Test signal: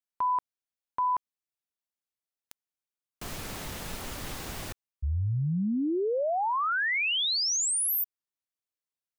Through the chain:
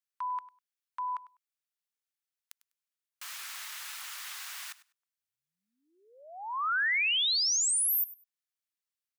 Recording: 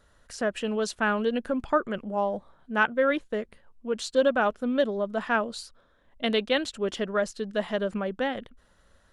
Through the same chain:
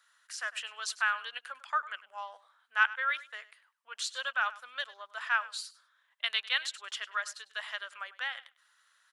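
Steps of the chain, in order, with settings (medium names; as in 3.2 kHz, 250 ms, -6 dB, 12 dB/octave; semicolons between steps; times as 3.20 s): high-pass 1.2 kHz 24 dB/octave; on a send: feedback delay 100 ms, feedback 16%, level -18 dB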